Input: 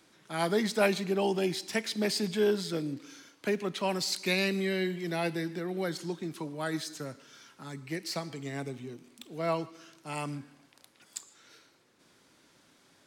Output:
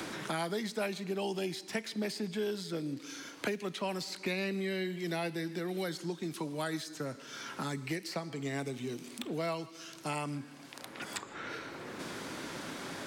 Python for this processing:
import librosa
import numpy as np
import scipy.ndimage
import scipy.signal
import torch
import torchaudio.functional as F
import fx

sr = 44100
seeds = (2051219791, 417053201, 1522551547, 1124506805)

y = fx.band_squash(x, sr, depth_pct=100)
y = F.gain(torch.from_numpy(y), -4.5).numpy()